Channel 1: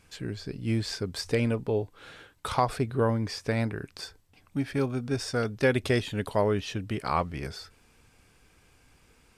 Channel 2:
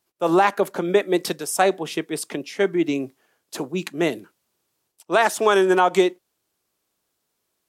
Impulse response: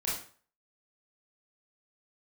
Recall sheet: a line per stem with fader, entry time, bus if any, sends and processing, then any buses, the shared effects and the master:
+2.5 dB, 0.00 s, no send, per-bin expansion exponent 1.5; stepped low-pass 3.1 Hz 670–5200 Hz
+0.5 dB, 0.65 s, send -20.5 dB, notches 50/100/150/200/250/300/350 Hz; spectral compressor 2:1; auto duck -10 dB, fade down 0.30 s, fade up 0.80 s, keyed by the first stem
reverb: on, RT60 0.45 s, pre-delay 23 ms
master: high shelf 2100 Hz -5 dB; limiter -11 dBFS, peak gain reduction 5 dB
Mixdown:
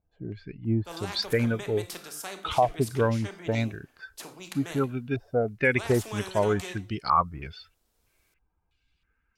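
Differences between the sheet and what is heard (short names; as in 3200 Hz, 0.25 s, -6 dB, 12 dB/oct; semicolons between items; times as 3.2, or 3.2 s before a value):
stem 2 +0.5 dB -> -6.5 dB; master: missing high shelf 2100 Hz -5 dB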